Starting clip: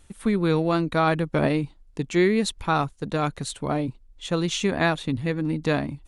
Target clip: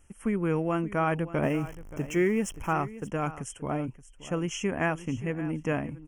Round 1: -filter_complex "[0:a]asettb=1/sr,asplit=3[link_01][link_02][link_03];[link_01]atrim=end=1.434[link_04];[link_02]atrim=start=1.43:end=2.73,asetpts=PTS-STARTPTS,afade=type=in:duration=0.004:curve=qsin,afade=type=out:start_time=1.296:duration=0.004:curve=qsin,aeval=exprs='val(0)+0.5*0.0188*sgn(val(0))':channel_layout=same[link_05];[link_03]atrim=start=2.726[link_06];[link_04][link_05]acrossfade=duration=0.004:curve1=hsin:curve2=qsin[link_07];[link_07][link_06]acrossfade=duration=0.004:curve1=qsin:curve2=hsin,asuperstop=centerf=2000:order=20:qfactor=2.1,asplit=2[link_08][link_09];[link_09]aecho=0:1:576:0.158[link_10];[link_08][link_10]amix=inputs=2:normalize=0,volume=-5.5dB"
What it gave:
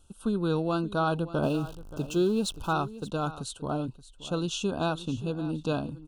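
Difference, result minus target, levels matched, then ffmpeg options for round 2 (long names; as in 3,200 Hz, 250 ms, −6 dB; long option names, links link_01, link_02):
4,000 Hz band +7.5 dB
-filter_complex "[0:a]asettb=1/sr,asplit=3[link_01][link_02][link_03];[link_01]atrim=end=1.434[link_04];[link_02]atrim=start=1.43:end=2.73,asetpts=PTS-STARTPTS,afade=type=in:duration=0.004:curve=qsin,afade=type=out:start_time=1.296:duration=0.004:curve=qsin,aeval=exprs='val(0)+0.5*0.0188*sgn(val(0))':channel_layout=same[link_05];[link_03]atrim=start=2.726[link_06];[link_04][link_05]acrossfade=duration=0.004:curve1=hsin:curve2=qsin[link_07];[link_07][link_06]acrossfade=duration=0.004:curve1=qsin:curve2=hsin,asuperstop=centerf=4100:order=20:qfactor=2.1,asplit=2[link_08][link_09];[link_09]aecho=0:1:576:0.158[link_10];[link_08][link_10]amix=inputs=2:normalize=0,volume=-5.5dB"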